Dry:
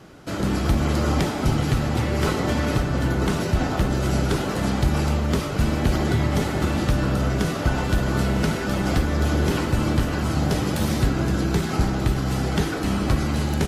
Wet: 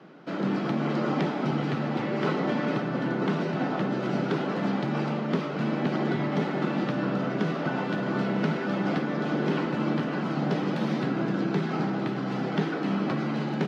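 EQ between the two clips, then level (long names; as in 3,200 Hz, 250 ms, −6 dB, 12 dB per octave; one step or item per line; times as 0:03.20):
Butterworth high-pass 150 Hz 48 dB per octave
high-frequency loss of the air 250 metres
−2.0 dB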